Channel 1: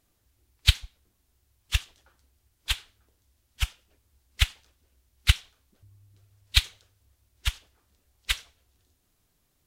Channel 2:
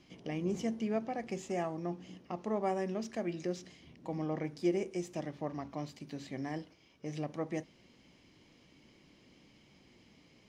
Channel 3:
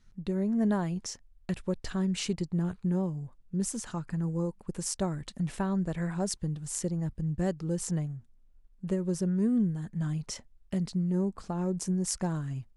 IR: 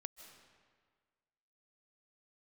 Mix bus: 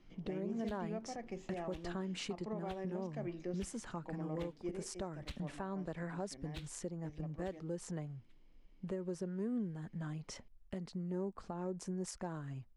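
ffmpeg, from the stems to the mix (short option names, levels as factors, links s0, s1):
-filter_complex "[0:a]asoftclip=type=hard:threshold=0.106,volume=0.112[s0];[1:a]highpass=120,volume=0.531,afade=t=out:st=4.44:d=0.33:silence=0.473151[s1];[2:a]acrossover=split=300|3000[s2][s3][s4];[s2]acompressor=threshold=0.00891:ratio=6[s5];[s5][s3][s4]amix=inputs=3:normalize=0,volume=0.75,asplit=2[s6][s7];[s7]apad=whole_len=426018[s8];[s0][s8]sidechaingate=range=0.0398:threshold=0.00251:ratio=16:detection=peak[s9];[s9][s1][s6]amix=inputs=3:normalize=0,lowpass=f=2300:p=1,alimiter=level_in=2.11:limit=0.0631:level=0:latency=1:release=278,volume=0.473"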